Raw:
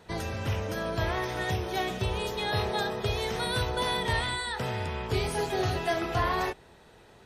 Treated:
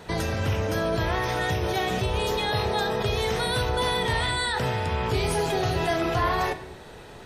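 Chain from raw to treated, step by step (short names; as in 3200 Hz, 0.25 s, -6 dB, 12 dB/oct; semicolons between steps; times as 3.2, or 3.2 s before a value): in parallel at -1 dB: negative-ratio compressor -37 dBFS, ratio -1; on the sum: shoebox room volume 150 m³, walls mixed, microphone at 0.32 m; gain +1 dB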